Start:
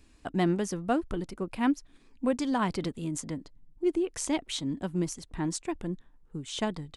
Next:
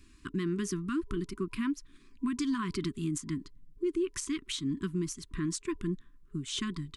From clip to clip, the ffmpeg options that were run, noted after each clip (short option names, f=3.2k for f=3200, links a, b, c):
-af "afftfilt=real='re*(1-between(b*sr/4096,410,990))':imag='im*(1-between(b*sr/4096,410,990))':win_size=4096:overlap=0.75,alimiter=level_in=1.5dB:limit=-24dB:level=0:latency=1:release=135,volume=-1.5dB,volume=1.5dB"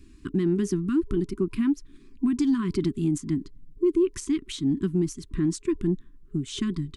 -af "lowshelf=f=570:t=q:w=1.5:g=7.5,acontrast=78,volume=-7dB"